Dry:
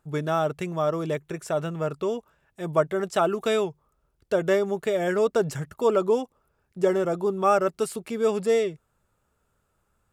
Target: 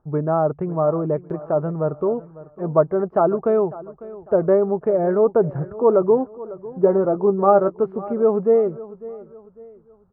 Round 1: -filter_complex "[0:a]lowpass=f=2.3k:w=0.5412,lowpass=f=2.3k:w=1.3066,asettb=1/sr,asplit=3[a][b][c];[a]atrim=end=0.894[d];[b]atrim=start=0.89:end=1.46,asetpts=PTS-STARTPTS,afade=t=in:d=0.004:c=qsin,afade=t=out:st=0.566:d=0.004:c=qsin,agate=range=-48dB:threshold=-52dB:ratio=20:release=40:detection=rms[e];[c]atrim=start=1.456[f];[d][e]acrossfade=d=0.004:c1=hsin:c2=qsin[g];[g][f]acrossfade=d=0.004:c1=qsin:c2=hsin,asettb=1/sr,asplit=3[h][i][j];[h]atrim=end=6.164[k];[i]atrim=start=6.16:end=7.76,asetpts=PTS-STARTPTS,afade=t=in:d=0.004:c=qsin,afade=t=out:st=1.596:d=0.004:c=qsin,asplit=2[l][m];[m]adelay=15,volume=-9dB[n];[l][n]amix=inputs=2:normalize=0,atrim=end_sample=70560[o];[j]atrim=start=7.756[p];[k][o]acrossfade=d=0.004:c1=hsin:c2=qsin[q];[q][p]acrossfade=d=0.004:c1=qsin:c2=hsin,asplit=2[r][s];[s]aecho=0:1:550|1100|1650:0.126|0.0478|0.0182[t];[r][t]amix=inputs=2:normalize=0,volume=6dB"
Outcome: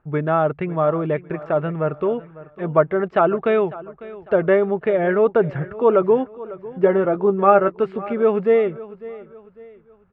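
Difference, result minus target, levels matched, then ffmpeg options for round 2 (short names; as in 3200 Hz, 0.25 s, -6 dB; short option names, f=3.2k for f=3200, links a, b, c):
2000 Hz band +12.5 dB
-filter_complex "[0:a]lowpass=f=1.1k:w=0.5412,lowpass=f=1.1k:w=1.3066,asettb=1/sr,asplit=3[a][b][c];[a]atrim=end=0.894[d];[b]atrim=start=0.89:end=1.46,asetpts=PTS-STARTPTS,afade=t=in:d=0.004:c=qsin,afade=t=out:st=0.566:d=0.004:c=qsin,agate=range=-48dB:threshold=-52dB:ratio=20:release=40:detection=rms[e];[c]atrim=start=1.456[f];[d][e]acrossfade=d=0.004:c1=hsin:c2=qsin[g];[g][f]acrossfade=d=0.004:c1=qsin:c2=hsin,asettb=1/sr,asplit=3[h][i][j];[h]atrim=end=6.164[k];[i]atrim=start=6.16:end=7.76,asetpts=PTS-STARTPTS,afade=t=in:d=0.004:c=qsin,afade=t=out:st=1.596:d=0.004:c=qsin,asplit=2[l][m];[m]adelay=15,volume=-9dB[n];[l][n]amix=inputs=2:normalize=0,atrim=end_sample=70560[o];[j]atrim=start=7.756[p];[k][o]acrossfade=d=0.004:c1=hsin:c2=qsin[q];[q][p]acrossfade=d=0.004:c1=qsin:c2=hsin,asplit=2[r][s];[s]aecho=0:1:550|1100|1650:0.126|0.0478|0.0182[t];[r][t]amix=inputs=2:normalize=0,volume=6dB"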